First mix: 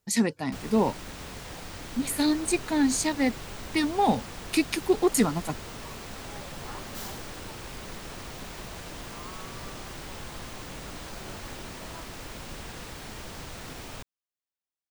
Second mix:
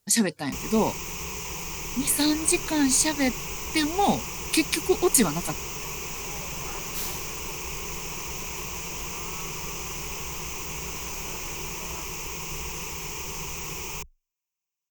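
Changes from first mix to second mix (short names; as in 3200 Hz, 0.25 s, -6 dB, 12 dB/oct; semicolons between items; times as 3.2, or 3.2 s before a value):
first sound: add ripple EQ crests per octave 0.75, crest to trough 16 dB; master: add high shelf 3300 Hz +9 dB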